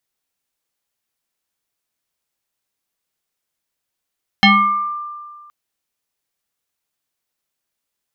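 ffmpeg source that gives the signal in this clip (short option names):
-f lavfi -i "aevalsrc='0.531*pow(10,-3*t/1.81)*sin(2*PI*1190*t+2.9*pow(10,-3*t/0.69)*sin(2*PI*0.83*1190*t))':d=1.07:s=44100"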